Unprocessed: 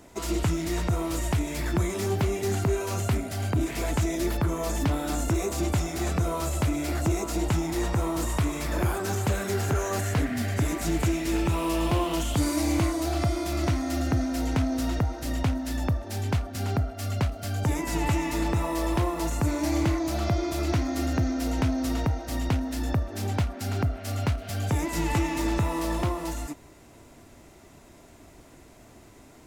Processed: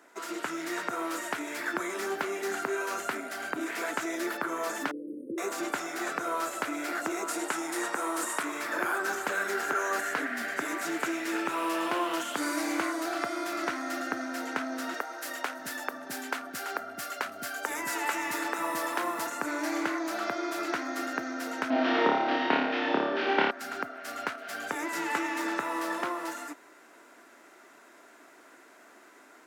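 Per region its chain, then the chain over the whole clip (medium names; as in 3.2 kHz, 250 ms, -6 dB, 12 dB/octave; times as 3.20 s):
4.91–5.38 s: brick-wall FIR band-stop 560–8700 Hz + distance through air 190 m
7.28–8.43 s: high-pass 200 Hz + peaking EQ 9.1 kHz +9.5 dB 0.79 oct
14.94–19.27 s: treble shelf 7.4 kHz +9 dB + bands offset in time highs, lows 650 ms, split 300 Hz
21.70–23.51 s: CVSD coder 32 kbps + FFT filter 110 Hz 0 dB, 250 Hz +11 dB, 820 Hz +9 dB, 1.3 kHz +3 dB, 3.1 kHz +10 dB, 12 kHz -27 dB + flutter echo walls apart 4.8 m, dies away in 0.84 s
whole clip: high-pass 280 Hz 24 dB/octave; peaking EQ 1.5 kHz +13.5 dB 0.91 oct; level rider gain up to 4 dB; trim -8.5 dB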